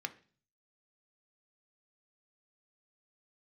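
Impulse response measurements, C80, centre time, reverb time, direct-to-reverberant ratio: 22.0 dB, 4 ms, 0.40 s, 7.0 dB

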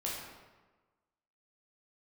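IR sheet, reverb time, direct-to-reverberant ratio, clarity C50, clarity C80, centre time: 1.3 s, -5.0 dB, 0.5 dB, 3.0 dB, 74 ms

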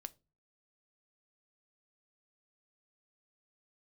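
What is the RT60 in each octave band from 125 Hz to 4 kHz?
0.50 s, 0.45 s, 0.35 s, 0.25 s, 0.20 s, 0.20 s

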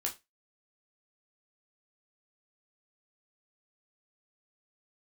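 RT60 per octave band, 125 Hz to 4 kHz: 0.20 s, 0.20 s, 0.20 s, 0.20 s, 0.20 s, 0.20 s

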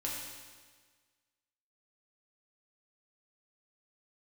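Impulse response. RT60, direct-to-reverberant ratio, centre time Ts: 1.5 s, -4.5 dB, 80 ms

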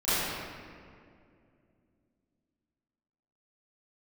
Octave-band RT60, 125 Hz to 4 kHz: 3.3 s, 3.5 s, 2.7 s, 2.0 s, 1.9 s, 1.3 s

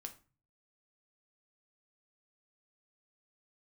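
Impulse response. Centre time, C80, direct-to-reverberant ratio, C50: 8 ms, 19.5 dB, 5.0 dB, 14.0 dB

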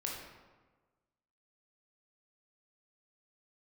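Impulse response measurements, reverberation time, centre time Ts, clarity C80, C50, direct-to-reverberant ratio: 1.3 s, 62 ms, 4.5 dB, 1.5 dB, -2.5 dB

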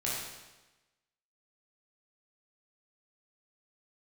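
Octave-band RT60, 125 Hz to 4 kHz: 1.1 s, 1.1 s, 1.1 s, 1.1 s, 1.1 s, 1.0 s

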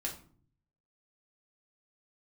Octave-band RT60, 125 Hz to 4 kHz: 1.0 s, 0.75 s, 0.55 s, 0.45 s, 0.35 s, 0.30 s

